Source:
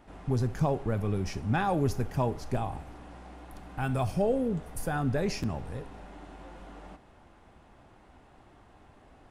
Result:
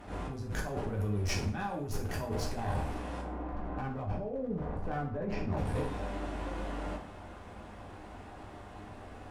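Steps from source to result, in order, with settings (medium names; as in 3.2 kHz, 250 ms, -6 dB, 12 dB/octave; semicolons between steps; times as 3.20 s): 3.21–5.57 s: low-pass 1.3 kHz 12 dB/octave; compressor with a negative ratio -36 dBFS, ratio -1; one-sided clip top -35.5 dBFS; reverberation RT60 0.50 s, pre-delay 3 ms, DRR -1 dB; attacks held to a fixed rise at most 150 dB/s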